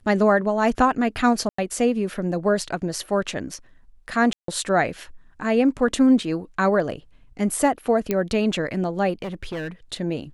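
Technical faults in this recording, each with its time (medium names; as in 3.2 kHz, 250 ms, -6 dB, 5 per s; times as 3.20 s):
1.49–1.58 s: dropout 94 ms
4.33–4.48 s: dropout 153 ms
8.11 s: pop -9 dBFS
9.22–9.69 s: clipped -26 dBFS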